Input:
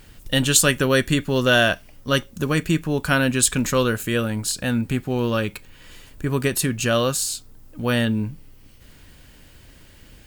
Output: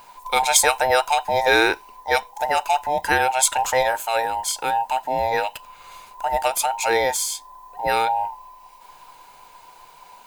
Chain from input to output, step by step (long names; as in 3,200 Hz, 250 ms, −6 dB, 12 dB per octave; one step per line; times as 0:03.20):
frequency inversion band by band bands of 1,000 Hz